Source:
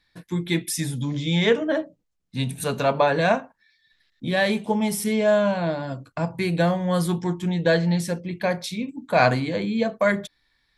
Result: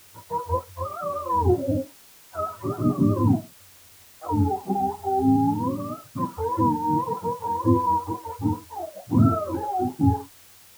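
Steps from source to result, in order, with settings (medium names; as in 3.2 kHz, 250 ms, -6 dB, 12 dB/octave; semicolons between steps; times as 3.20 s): spectrum inverted on a logarithmic axis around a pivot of 410 Hz; added noise white -51 dBFS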